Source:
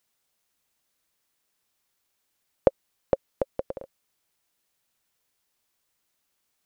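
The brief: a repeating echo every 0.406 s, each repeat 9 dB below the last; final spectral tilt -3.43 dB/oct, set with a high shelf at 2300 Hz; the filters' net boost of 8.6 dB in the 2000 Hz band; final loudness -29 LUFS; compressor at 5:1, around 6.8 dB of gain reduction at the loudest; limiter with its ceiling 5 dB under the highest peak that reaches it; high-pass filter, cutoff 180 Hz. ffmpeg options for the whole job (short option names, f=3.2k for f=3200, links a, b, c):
-af "highpass=180,equalizer=f=2k:t=o:g=7.5,highshelf=f=2.3k:g=7.5,acompressor=threshold=-23dB:ratio=5,alimiter=limit=-10dB:level=0:latency=1,aecho=1:1:406|812|1218|1624:0.355|0.124|0.0435|0.0152,volume=9.5dB"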